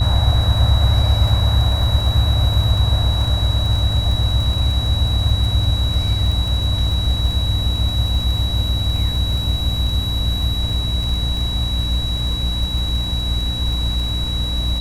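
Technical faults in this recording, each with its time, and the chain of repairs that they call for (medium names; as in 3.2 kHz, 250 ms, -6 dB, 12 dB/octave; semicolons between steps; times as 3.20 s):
crackle 22 per s -24 dBFS
hum 60 Hz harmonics 5 -22 dBFS
whine 3.9 kHz -24 dBFS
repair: de-click; band-stop 3.9 kHz, Q 30; de-hum 60 Hz, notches 5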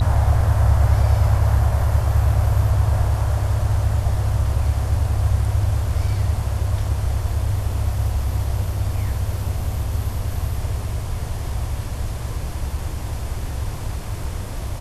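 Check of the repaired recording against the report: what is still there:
nothing left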